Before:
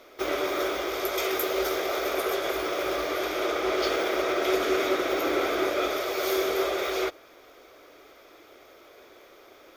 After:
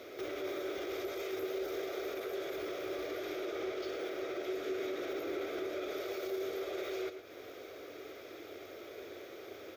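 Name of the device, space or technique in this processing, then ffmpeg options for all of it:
broadcast voice chain: -af "highpass=79,deesser=0.65,acompressor=threshold=-40dB:ratio=3,equalizer=f=3.9k:t=o:w=0.22:g=5,alimiter=level_in=10.5dB:limit=-24dB:level=0:latency=1:release=52,volume=-10.5dB,equalizer=f=100:t=o:w=0.67:g=8,equalizer=f=400:t=o:w=0.67:g=5,equalizer=f=1k:t=o:w=0.67:g=-9,equalizer=f=4k:t=o:w=0.67:g=-4,equalizer=f=10k:t=o:w=0.67:g=-7,aecho=1:1:113:0.316,volume=2.5dB"

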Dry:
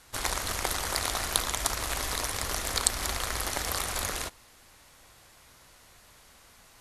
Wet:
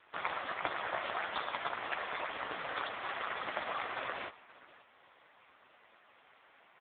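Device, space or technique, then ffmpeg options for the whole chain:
satellite phone: -af "highpass=340,lowpass=3.1k,aecho=1:1:524:0.106,volume=2.5dB" -ar 8000 -c:a libopencore_amrnb -b:a 5150

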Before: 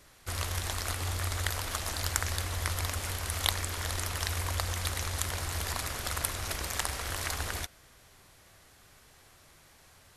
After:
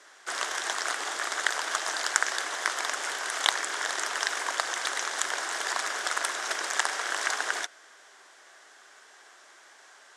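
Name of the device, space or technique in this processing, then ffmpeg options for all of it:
phone speaker on a table: -filter_complex "[0:a]asettb=1/sr,asplit=3[a][b][c];[a]atrim=end=1.794[d];[b]atrim=start=1.79:end=2.67,asetpts=PTS-STARTPTS,afade=t=in:d=0.004:c=qsin,afade=t=out:st=0.876:d=0.004:c=qsin,highpass=170[e];[c]atrim=start=2.666[f];[d][e]acrossfade=d=0.004:c1=hsin:c2=qsin[g];[g][f]acrossfade=d=0.004:c1=qsin:c2=hsin,highpass=f=390:w=0.5412,highpass=f=390:w=1.3066,equalizer=f=510:t=q:w=4:g=-6,equalizer=f=1.6k:t=q:w=4:g=6,equalizer=f=2.5k:t=q:w=4:g=-5,equalizer=f=4.3k:t=q:w=4:g=-5,lowpass=f=8k:w=0.5412,lowpass=f=8k:w=1.3066,volume=6.5dB"

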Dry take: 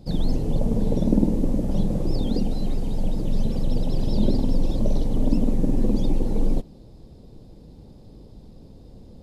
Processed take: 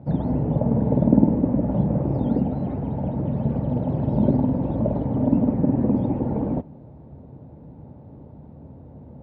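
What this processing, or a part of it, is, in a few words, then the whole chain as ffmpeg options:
bass cabinet: -af "highpass=f=63:w=0.5412,highpass=f=63:w=1.3066,equalizer=f=81:t=q:w=4:g=7,equalizer=f=140:t=q:w=4:g=9,equalizer=f=260:t=q:w=4:g=6,equalizer=f=620:t=q:w=4:g=7,equalizer=f=890:t=q:w=4:g=9,equalizer=f=1.4k:t=q:w=4:g=4,lowpass=f=2.1k:w=0.5412,lowpass=f=2.1k:w=1.3066"

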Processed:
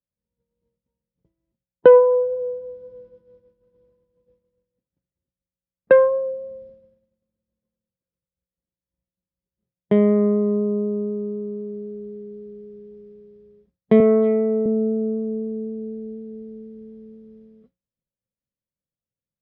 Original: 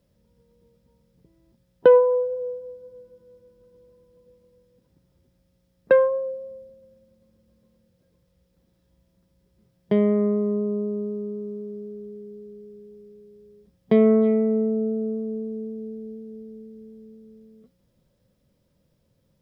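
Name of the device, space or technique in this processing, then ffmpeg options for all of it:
hearing-loss simulation: -filter_complex "[0:a]lowpass=2.9k,agate=range=-33dB:threshold=-47dB:ratio=3:detection=peak,asettb=1/sr,asplit=3[a][b][c];[a]atrim=end=14.004[d];[b]atrim=start=14:end=14.66,asetpts=PTS-STARTPTS,afade=t=in:d=0.004:c=qsin,afade=t=out:st=0.656:d=0.004:c=qsin,highpass=270[e];[c]atrim=start=14.656[f];[d][e]acrossfade=d=0.004:c1=hsin:c2=qsin[g];[g][f]acrossfade=d=0.004:c1=qsin:c2=hsin,volume=3.5dB"

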